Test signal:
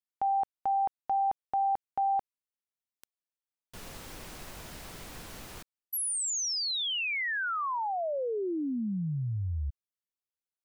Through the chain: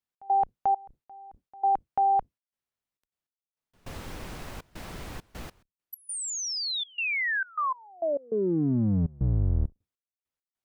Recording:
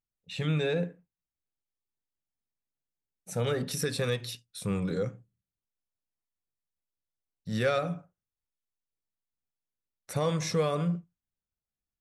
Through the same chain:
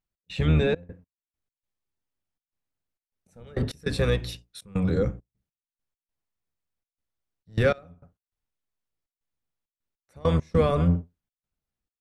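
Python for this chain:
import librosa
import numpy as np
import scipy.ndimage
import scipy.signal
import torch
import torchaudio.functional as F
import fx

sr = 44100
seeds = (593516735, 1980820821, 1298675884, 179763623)

y = fx.octave_divider(x, sr, octaves=1, level_db=-1.0)
y = fx.high_shelf(y, sr, hz=4100.0, db=-9.0)
y = fx.step_gate(y, sr, bpm=101, pattern='x.xxx.x..x.xxxx', floor_db=-24.0, edge_ms=4.5)
y = y * 10.0 ** (5.5 / 20.0)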